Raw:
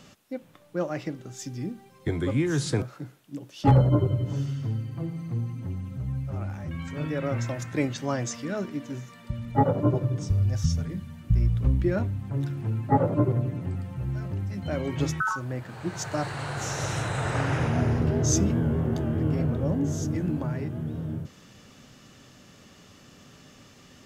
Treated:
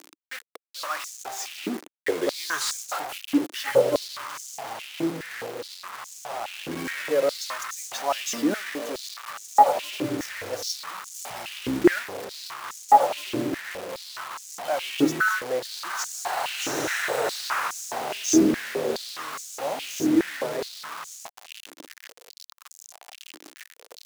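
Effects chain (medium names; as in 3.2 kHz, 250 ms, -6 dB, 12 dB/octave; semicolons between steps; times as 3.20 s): jump at every zero crossing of -34.5 dBFS; 2.40–3.38 s: waveshaping leveller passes 1; 11.14–12.25 s: treble shelf 2.2 kHz +4.5 dB; bit crusher 6-bit; step-sequenced high-pass 4.8 Hz 310–6600 Hz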